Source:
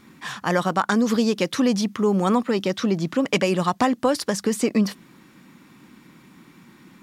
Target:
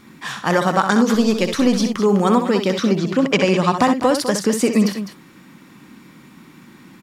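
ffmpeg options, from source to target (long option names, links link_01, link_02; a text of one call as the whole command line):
ffmpeg -i in.wav -filter_complex "[0:a]asettb=1/sr,asplit=3[link_01][link_02][link_03];[link_01]atrim=end=1.144[link_04];[link_02]atrim=start=1.14:end=1.8,asetpts=PTS-STARTPTS,afade=type=in:duration=0.004:curve=qsin,afade=type=out:start_time=0.656:duration=0.004:curve=qsin,aeval=exprs='if(lt(val(0),0),0.708*val(0),val(0))':channel_layout=same[link_05];[link_03]atrim=start=1.796[link_06];[link_04][link_05]acrossfade=duration=0.004:curve1=hsin:curve2=qsin[link_07];[link_07][link_06]acrossfade=duration=0.004:curve1=qsin:curve2=hsin,aecho=1:1:64.14|204.1:0.398|0.282,asettb=1/sr,asplit=3[link_08][link_09][link_10];[link_08]atrim=end=2.934[link_11];[link_09]atrim=start=2.93:end=3.77,asetpts=PTS-STARTPTS,afade=type=in:duration=0.004:curve=qsin,afade=type=out:start_time=0.836:duration=0.004:curve=qsin,acrossover=split=7100[link_12][link_13];[link_13]acompressor=threshold=-55dB:ratio=4:attack=1:release=60[link_14];[link_12][link_14]amix=inputs=2:normalize=0[link_15];[link_10]atrim=start=3.766[link_16];[link_11][link_15]acrossfade=duration=0.004:curve1=hsin:curve2=qsin[link_17];[link_17][link_16]acrossfade=duration=0.004:curve1=qsin:curve2=hsin,volume=4dB" out.wav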